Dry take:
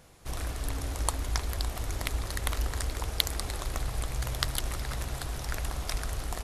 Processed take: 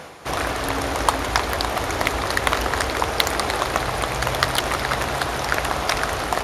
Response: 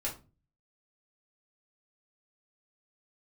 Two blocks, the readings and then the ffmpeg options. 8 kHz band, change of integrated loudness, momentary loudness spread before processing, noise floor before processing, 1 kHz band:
+7.0 dB, +11.0 dB, 5 LU, -39 dBFS, +18.0 dB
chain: -filter_complex "[0:a]highpass=58,highshelf=f=2.7k:g=-11,bandreject=f=7.8k:w=11,areverse,acompressor=mode=upward:threshold=-42dB:ratio=2.5,areverse,asplit=2[a][b];[b]highpass=f=720:p=1,volume=22dB,asoftclip=type=tanh:threshold=-4dB[c];[a][c]amix=inputs=2:normalize=0,lowpass=f=6.7k:p=1,volume=-6dB,volume=6dB"

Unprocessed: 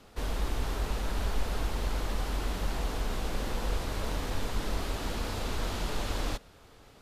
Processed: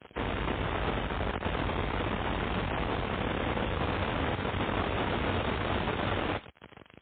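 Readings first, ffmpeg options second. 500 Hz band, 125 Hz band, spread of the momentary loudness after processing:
+5.5 dB, +2.0 dB, 2 LU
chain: -filter_complex "[0:a]asplit=2[a][b];[b]adynamicsmooth=sensitivity=6.5:basefreq=610,volume=-2dB[c];[a][c]amix=inputs=2:normalize=0,asoftclip=type=tanh:threshold=-29dB,aeval=exprs='0.0355*(cos(1*acos(clip(val(0)/0.0355,-1,1)))-cos(1*PI/2))+0.00158*(cos(2*acos(clip(val(0)/0.0355,-1,1)))-cos(2*PI/2))+0.00158*(cos(5*acos(clip(val(0)/0.0355,-1,1)))-cos(5*PI/2))+0.00447*(cos(7*acos(clip(val(0)/0.0355,-1,1)))-cos(7*PI/2))+0.00316*(cos(8*acos(clip(val(0)/0.0355,-1,1)))-cos(8*PI/2))':c=same,acrusher=bits=7:mix=0:aa=0.5,crystalizer=i=4:c=0,highpass=f=67:w=0.5412,highpass=f=67:w=1.3066,acrossover=split=3000[d][e];[e]acompressor=threshold=-49dB:ratio=4:attack=1:release=60[f];[d][f]amix=inputs=2:normalize=0,volume=6.5dB" -ar 8000 -c:a libmp3lame -b:a 16k

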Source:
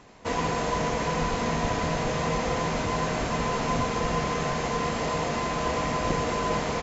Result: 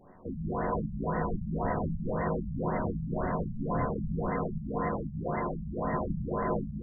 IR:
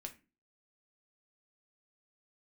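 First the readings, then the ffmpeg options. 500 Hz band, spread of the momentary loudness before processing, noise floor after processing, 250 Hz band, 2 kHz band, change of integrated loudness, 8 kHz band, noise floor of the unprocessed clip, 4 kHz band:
-5.5 dB, 1 LU, -40 dBFS, -2.0 dB, -11.5 dB, -5.5 dB, n/a, -30 dBFS, under -40 dB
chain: -filter_complex "[0:a]asplit=2[a][b];[b]adynamicsmooth=sensitivity=6.5:basefreq=3.2k,volume=2dB[c];[a][c]amix=inputs=2:normalize=0[d];[1:a]atrim=start_sample=2205[e];[d][e]afir=irnorm=-1:irlink=0,afftfilt=real='re*lt(b*sr/1024,210*pow(2100/210,0.5+0.5*sin(2*PI*1.9*pts/sr)))':imag='im*lt(b*sr/1024,210*pow(2100/210,0.5+0.5*sin(2*PI*1.9*pts/sr)))':win_size=1024:overlap=0.75,volume=-5dB"

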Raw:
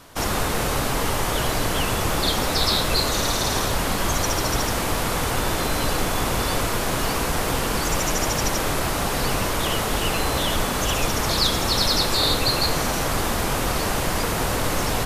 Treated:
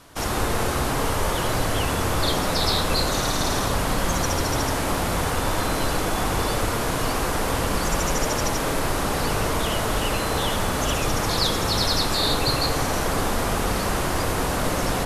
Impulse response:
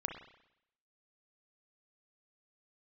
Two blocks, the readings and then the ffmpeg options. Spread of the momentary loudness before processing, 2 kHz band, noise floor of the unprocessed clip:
4 LU, -1.0 dB, -24 dBFS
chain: -filter_complex "[1:a]atrim=start_sample=2205,asetrate=24255,aresample=44100[a];[0:a][a]afir=irnorm=-1:irlink=0,volume=-4.5dB"

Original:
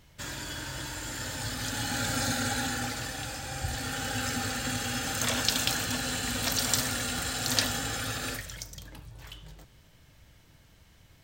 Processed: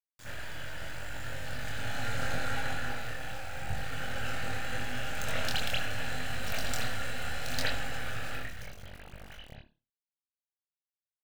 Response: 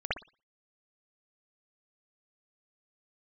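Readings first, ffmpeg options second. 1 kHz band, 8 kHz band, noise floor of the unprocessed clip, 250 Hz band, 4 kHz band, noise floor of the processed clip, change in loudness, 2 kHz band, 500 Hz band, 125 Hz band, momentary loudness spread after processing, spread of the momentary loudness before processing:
-3.5 dB, -13.5 dB, -58 dBFS, -9.0 dB, -7.5 dB, under -85 dBFS, -6.0 dB, -2.0 dB, -2.0 dB, -3.5 dB, 14 LU, 14 LU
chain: -filter_complex "[0:a]acrusher=bits=4:dc=4:mix=0:aa=0.000001[a];[1:a]atrim=start_sample=2205[b];[a][b]afir=irnorm=-1:irlink=0,flanger=delay=22.5:depth=4.3:speed=0.77,volume=-3.5dB"

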